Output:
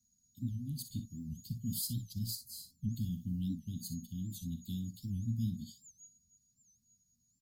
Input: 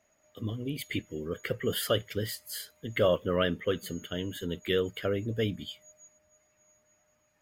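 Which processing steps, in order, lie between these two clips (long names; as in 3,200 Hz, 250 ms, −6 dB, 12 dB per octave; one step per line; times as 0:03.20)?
Chebyshev band-stop filter 240–4,100 Hz, order 5
0:02.41–0:02.89: tilt shelving filter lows +7 dB
ambience of single reflections 43 ms −15 dB, 60 ms −11.5 dB
wow of a warped record 78 rpm, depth 160 cents
level −1 dB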